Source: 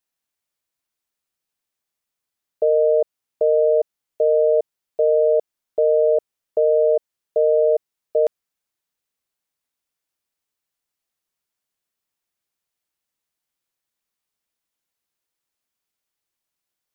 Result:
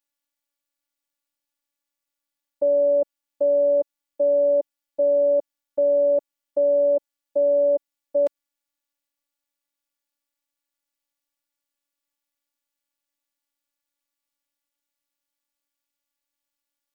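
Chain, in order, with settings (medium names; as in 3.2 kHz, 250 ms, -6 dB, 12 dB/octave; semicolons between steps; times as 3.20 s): robot voice 286 Hz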